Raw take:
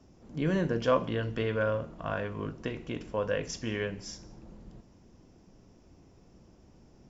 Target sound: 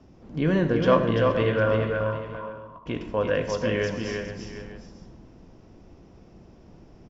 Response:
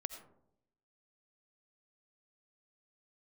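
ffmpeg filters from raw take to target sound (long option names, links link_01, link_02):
-filter_complex "[0:a]asettb=1/sr,asplit=3[link_01][link_02][link_03];[link_01]atrim=end=2.034[link_04];[link_02]atrim=start=2.03:end=2.86,asetpts=PTS-STARTPTS,afade=type=in:duration=0.004:curve=qsin,afade=type=out:start_time=0.826:duration=0.004:curve=qsin,asuperpass=centerf=1000:order=4:qfactor=7.2[link_05];[link_03]atrim=start=2.856[link_06];[link_04][link_05]acrossfade=duration=0.004:curve1=hsin:curve2=qsin[link_07];[link_07][link_06]acrossfade=duration=0.004:curve1=qsin:curve2=hsin,aecho=1:1:340|471|753|897:0.596|0.2|0.178|0.1,asplit=2[link_08][link_09];[1:a]atrim=start_sample=2205,lowpass=4900[link_10];[link_09][link_10]afir=irnorm=-1:irlink=0,volume=8.5dB[link_11];[link_08][link_11]amix=inputs=2:normalize=0,volume=-4dB"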